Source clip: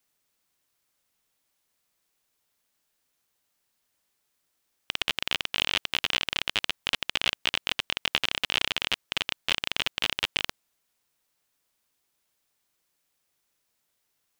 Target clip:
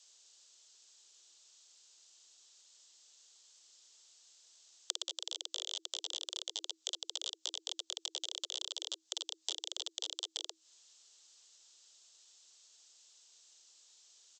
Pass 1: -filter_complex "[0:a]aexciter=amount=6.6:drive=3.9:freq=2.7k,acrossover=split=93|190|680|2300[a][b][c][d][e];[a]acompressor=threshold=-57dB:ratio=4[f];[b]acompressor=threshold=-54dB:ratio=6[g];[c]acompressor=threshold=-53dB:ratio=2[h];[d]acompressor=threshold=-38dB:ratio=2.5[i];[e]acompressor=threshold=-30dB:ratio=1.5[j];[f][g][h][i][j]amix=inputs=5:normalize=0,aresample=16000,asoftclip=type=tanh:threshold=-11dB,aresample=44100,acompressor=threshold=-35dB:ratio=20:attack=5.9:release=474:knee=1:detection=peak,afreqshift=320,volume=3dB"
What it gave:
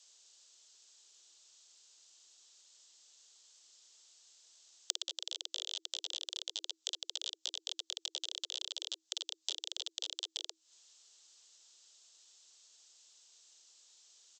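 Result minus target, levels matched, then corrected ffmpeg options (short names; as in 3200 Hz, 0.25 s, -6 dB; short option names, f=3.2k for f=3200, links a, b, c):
soft clip: distortion -7 dB
-filter_complex "[0:a]aexciter=amount=6.6:drive=3.9:freq=2.7k,acrossover=split=93|190|680|2300[a][b][c][d][e];[a]acompressor=threshold=-57dB:ratio=4[f];[b]acompressor=threshold=-54dB:ratio=6[g];[c]acompressor=threshold=-53dB:ratio=2[h];[d]acompressor=threshold=-38dB:ratio=2.5[i];[e]acompressor=threshold=-30dB:ratio=1.5[j];[f][g][h][i][j]amix=inputs=5:normalize=0,aresample=16000,asoftclip=type=tanh:threshold=-18dB,aresample=44100,acompressor=threshold=-35dB:ratio=20:attack=5.9:release=474:knee=1:detection=peak,afreqshift=320,volume=3dB"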